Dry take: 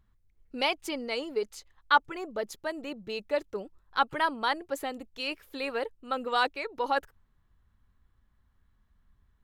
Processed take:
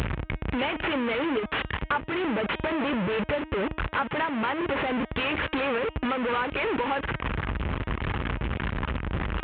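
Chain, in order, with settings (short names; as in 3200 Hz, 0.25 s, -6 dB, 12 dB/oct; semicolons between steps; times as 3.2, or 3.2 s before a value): delta modulation 16 kbps, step -23 dBFS; HPF 43 Hz 24 dB/oct; notch 720 Hz, Q 12; de-hum 313.8 Hz, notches 12; compressor 5:1, threshold -33 dBFS, peak gain reduction 14.5 dB; gain +8 dB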